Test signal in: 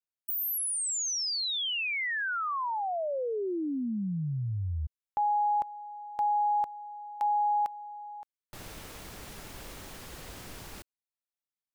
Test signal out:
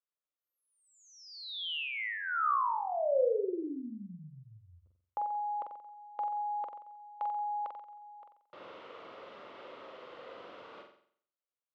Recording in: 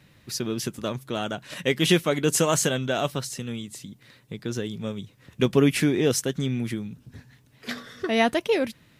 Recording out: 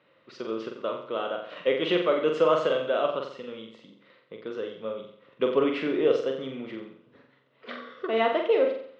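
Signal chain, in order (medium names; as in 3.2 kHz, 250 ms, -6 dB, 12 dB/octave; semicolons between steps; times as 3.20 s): cabinet simulation 460–2800 Hz, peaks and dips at 520 Hz +7 dB, 790 Hz -7 dB, 1.2 kHz +4 dB, 1.7 kHz -10 dB, 2.4 kHz -7 dB; flutter echo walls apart 7.7 m, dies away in 0.58 s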